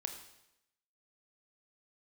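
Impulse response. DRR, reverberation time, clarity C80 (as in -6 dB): 5.0 dB, 0.85 s, 10.0 dB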